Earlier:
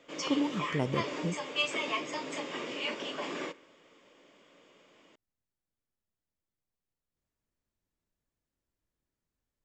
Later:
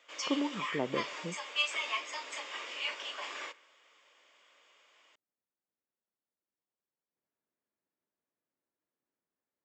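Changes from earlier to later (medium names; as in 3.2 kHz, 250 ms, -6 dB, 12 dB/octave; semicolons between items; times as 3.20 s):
speech: add band-pass 280–2200 Hz; background: add high-pass 960 Hz 12 dB/octave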